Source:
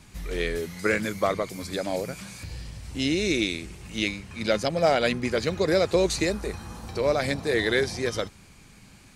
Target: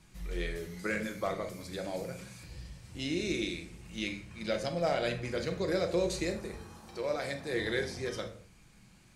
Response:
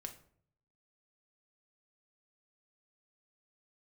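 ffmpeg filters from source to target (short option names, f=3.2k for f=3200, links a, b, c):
-filter_complex "[0:a]asettb=1/sr,asplit=3[a][b][c];[a]atrim=end=6.634[d];[b]atrim=start=6.63:end=7.49,asetpts=PTS-STARTPTS,afade=t=in:d=0.004:c=qsin,afade=t=out:st=0.856:d=0.004:c=qsin,lowshelf=f=160:g=-10.5[e];[c]atrim=start=7.486[f];[d][e]acrossfade=d=0.004:c1=hsin:c2=qsin[g];[g][f]acrossfade=d=0.004:c1=qsin:c2=hsin[h];[1:a]atrim=start_sample=2205,afade=t=out:st=0.25:d=0.01,atrim=end_sample=11466,asetrate=37926,aresample=44100[i];[h][i]afir=irnorm=-1:irlink=0,volume=-6dB"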